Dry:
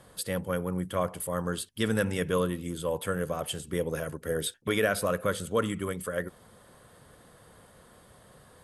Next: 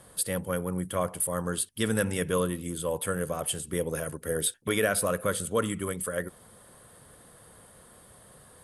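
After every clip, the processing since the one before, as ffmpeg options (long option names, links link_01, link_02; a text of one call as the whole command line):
ffmpeg -i in.wav -af "equalizer=frequency=9700:width=1.9:gain=10.5" out.wav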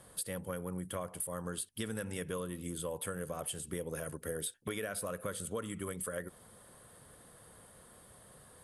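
ffmpeg -i in.wav -af "acompressor=threshold=-31dB:ratio=6,volume=-4dB" out.wav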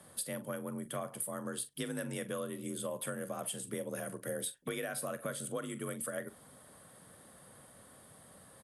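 ffmpeg -i in.wav -filter_complex "[0:a]afreqshift=41,asplit=2[link_01][link_02];[link_02]adelay=43,volume=-13.5dB[link_03];[link_01][link_03]amix=inputs=2:normalize=0" out.wav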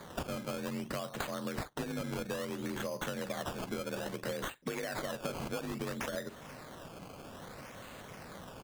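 ffmpeg -i in.wav -af "acompressor=threshold=-44dB:ratio=5,acrusher=samples=16:mix=1:aa=0.000001:lfo=1:lforange=16:lforate=0.6,volume=9dB" out.wav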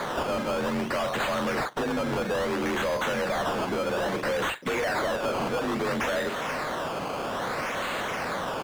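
ffmpeg -i in.wav -filter_complex "[0:a]asplit=2[link_01][link_02];[link_02]highpass=frequency=720:poles=1,volume=33dB,asoftclip=type=tanh:threshold=-19.5dB[link_03];[link_01][link_03]amix=inputs=2:normalize=0,lowpass=frequency=3100:poles=1,volume=-6dB" out.wav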